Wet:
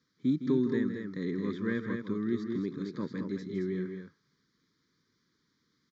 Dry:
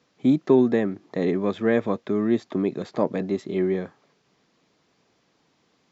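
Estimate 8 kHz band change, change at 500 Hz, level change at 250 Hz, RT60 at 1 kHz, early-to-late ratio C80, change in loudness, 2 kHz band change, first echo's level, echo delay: no reading, -12.5 dB, -7.5 dB, no reverb, no reverb, -9.0 dB, -7.0 dB, -10.5 dB, 160 ms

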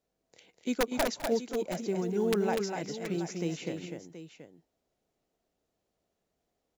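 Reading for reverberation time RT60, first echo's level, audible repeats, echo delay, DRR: no reverb, -17.5 dB, 3, 206 ms, no reverb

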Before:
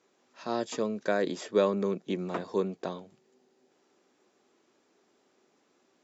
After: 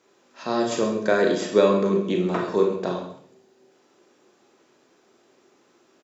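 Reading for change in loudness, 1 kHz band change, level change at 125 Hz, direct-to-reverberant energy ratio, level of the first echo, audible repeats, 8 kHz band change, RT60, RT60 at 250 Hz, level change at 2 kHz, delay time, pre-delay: +8.5 dB, +8.0 dB, +8.5 dB, 0.5 dB, -13.0 dB, 1, no reading, 0.55 s, 0.70 s, +9.0 dB, 133 ms, 27 ms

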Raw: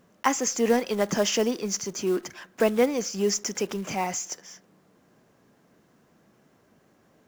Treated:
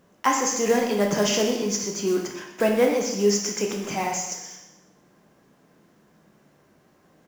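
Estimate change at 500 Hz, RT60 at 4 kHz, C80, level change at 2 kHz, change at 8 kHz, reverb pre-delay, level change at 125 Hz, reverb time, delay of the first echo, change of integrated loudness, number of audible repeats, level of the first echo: +2.5 dB, 0.85 s, 6.5 dB, +3.0 dB, +2.5 dB, 4 ms, +3.5 dB, 0.90 s, 123 ms, +2.5 dB, 1, -12.5 dB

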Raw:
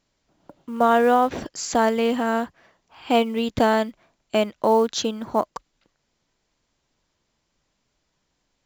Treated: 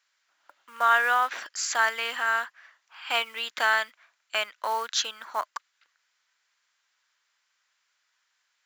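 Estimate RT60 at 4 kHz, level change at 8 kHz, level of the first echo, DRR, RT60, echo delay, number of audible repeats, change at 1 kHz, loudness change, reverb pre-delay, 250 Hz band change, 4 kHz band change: no reverb, +0.5 dB, no echo, no reverb, no reverb, no echo, no echo, -4.5 dB, -4.5 dB, no reverb, -32.0 dB, +1.5 dB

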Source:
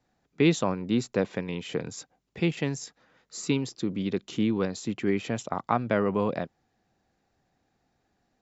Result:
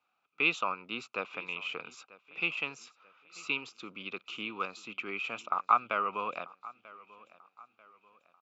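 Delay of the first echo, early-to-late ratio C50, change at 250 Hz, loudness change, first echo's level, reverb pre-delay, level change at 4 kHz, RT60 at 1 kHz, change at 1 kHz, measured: 940 ms, no reverb, -19.0 dB, -5.0 dB, -20.5 dB, no reverb, -1.5 dB, no reverb, +1.5 dB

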